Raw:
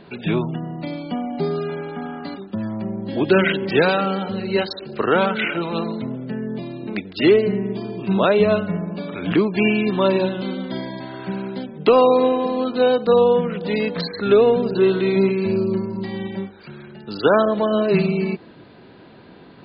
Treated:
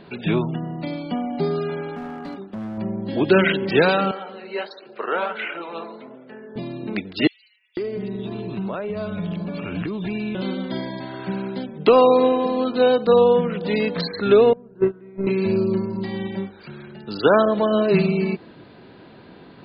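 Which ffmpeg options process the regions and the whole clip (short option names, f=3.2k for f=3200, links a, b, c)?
-filter_complex "[0:a]asettb=1/sr,asplit=3[a][b][c];[a]atrim=end=1.954[d];[b]atrim=start=1.95:end=2.78,asetpts=PTS-STARTPTS,afade=t=in:d=0.004:c=qsin,afade=t=out:st=0.826:d=0.004:c=qsin,lowpass=f=1.8k:p=1,lowshelf=f=120:g=-5.5,asoftclip=type=hard:threshold=-28dB[e];[c]atrim=start=2.776[f];[d][e]acrossfade=d=0.004:c1=hsin:c2=qsin[g];[g][f]acrossfade=d=0.004:c1=qsin:c2=hsin,asettb=1/sr,asplit=3[h][i][j];[h]atrim=end=4.114[k];[i]atrim=start=4.11:end=6.56,asetpts=PTS-STARTPTS,afade=t=in:d=0.004:c=qsin,afade=t=out:st=2.446:d=0.004:c=qsin,highpass=470,lowpass=2.9k,flanger=delay=6.1:depth=9.3:regen=-59:speed=1.4:shape=triangular[l];[j]atrim=start=6.556[m];[k][l]acrossfade=d=0.004:c1=hsin:c2=qsin[n];[n][m]acrossfade=d=0.004:c1=qsin:c2=hsin,asettb=1/sr,asplit=3[o][p][q];[o]atrim=end=7.274[r];[p]atrim=start=7.27:end=10.35,asetpts=PTS-STARTPTS,afade=t=in:d=0.004:c=qsin,afade=t=out:st=3.076:d=0.004:c=qsin,acompressor=threshold=-25dB:ratio=5:attack=3.2:release=140:knee=1:detection=peak,asubboost=boost=3:cutoff=200,acrossover=split=2900[s][t];[s]adelay=500[u];[u][t]amix=inputs=2:normalize=0,atrim=end_sample=135828[v];[q]atrim=start=10.346[w];[r][v]acrossfade=d=0.004:c1=hsin:c2=qsin[x];[x][w]acrossfade=d=0.004:c1=qsin:c2=hsin,asettb=1/sr,asplit=3[y][z][aa];[y]atrim=end=14.534[ab];[z]atrim=start=14.53:end=15.27,asetpts=PTS-STARTPTS,afade=t=in:d=0.004:c=qsin,afade=t=out:st=0.736:d=0.004:c=qsin,agate=range=-25dB:threshold=-14dB:ratio=16:release=100:detection=peak,lowpass=f=1.9k:w=0.5412,lowpass=f=1.9k:w=1.3066,lowshelf=f=110:g=11.5[ac];[aa]atrim=start=15.266[ad];[ab][ac]acrossfade=d=0.004:c1=hsin:c2=qsin[ae];[ae][ad]acrossfade=d=0.004:c1=qsin:c2=hsin"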